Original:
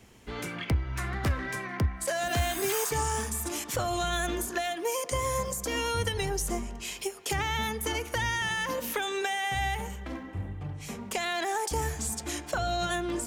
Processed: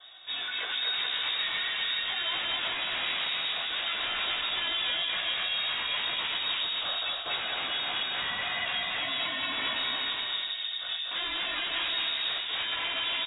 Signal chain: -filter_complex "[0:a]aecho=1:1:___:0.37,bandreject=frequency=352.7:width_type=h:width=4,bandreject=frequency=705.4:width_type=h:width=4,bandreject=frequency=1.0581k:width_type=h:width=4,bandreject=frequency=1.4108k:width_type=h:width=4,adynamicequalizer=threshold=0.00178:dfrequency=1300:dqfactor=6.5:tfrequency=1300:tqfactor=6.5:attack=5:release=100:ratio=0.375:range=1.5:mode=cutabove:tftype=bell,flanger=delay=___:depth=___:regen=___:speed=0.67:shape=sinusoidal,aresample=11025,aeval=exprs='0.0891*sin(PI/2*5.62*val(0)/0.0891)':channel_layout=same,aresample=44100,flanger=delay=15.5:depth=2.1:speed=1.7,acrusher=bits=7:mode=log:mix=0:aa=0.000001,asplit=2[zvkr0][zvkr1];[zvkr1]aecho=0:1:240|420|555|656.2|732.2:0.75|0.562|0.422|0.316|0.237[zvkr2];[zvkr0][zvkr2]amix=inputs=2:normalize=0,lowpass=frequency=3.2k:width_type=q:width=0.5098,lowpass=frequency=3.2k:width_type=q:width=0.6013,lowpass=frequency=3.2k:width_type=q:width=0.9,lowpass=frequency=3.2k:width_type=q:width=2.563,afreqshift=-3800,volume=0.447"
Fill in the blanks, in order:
2.6, 4.4, 4.6, -78